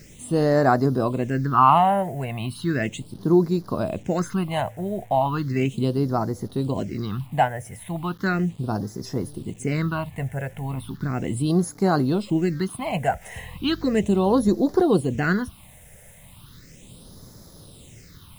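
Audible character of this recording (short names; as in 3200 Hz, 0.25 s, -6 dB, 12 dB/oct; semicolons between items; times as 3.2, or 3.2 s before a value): a quantiser's noise floor 8-bit, dither none; phasing stages 6, 0.36 Hz, lowest notch 300–2700 Hz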